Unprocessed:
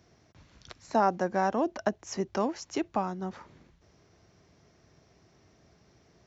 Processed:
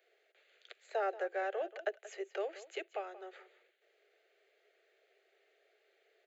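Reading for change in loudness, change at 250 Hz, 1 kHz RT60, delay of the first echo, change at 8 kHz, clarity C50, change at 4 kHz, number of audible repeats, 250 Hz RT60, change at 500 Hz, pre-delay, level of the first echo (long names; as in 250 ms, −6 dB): −9.0 dB, −21.0 dB, no reverb audible, 180 ms, can't be measured, no reverb audible, −8.0 dB, 1, no reverb audible, −6.5 dB, no reverb audible, −16.0 dB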